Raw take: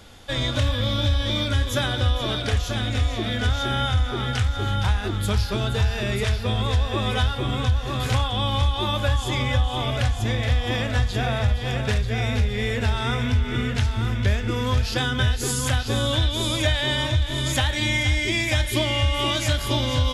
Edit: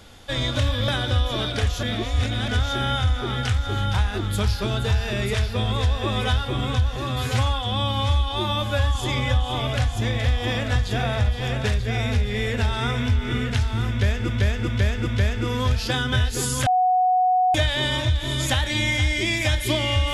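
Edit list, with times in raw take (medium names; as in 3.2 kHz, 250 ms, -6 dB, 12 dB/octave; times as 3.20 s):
0.88–1.78 s: delete
2.73–3.38 s: reverse
7.86–9.19 s: stretch 1.5×
14.13–14.52 s: loop, 4 plays
15.73–16.61 s: bleep 737 Hz -15.5 dBFS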